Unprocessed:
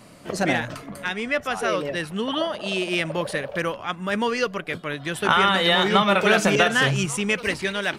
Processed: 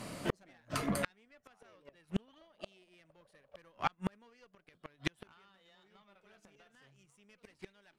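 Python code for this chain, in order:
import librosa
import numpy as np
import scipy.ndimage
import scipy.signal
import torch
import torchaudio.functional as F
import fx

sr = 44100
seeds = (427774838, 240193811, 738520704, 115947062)

y = fx.rider(x, sr, range_db=5, speed_s=0.5)
y = fx.tube_stage(y, sr, drive_db=13.0, bias=0.7)
y = fx.gate_flip(y, sr, shuts_db=-20.0, range_db=-40)
y = y * librosa.db_to_amplitude(2.5)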